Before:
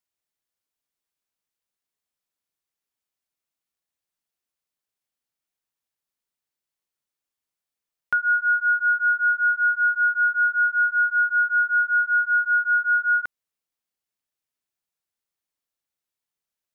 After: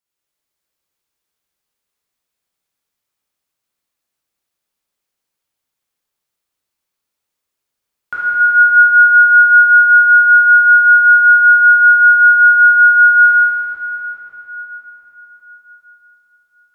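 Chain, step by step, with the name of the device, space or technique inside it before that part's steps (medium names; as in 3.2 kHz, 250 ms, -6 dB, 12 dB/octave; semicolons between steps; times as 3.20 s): cathedral (reverberation RT60 4.7 s, pre-delay 11 ms, DRR -10.5 dB); trim -1 dB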